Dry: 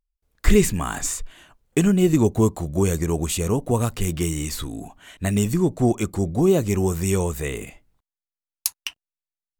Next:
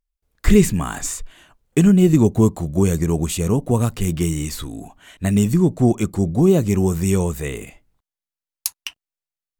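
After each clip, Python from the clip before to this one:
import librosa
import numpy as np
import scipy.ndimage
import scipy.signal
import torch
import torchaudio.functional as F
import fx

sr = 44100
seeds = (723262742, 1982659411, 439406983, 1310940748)

y = fx.dynamic_eq(x, sr, hz=170.0, q=0.85, threshold_db=-31.0, ratio=4.0, max_db=6)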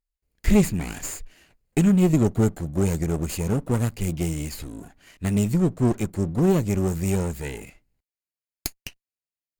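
y = fx.lower_of_two(x, sr, delay_ms=0.42)
y = y * 10.0 ** (-5.0 / 20.0)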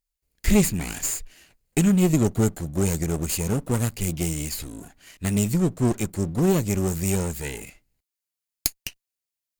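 y = fx.high_shelf(x, sr, hz=2900.0, db=8.5)
y = y * 10.0 ** (-1.0 / 20.0)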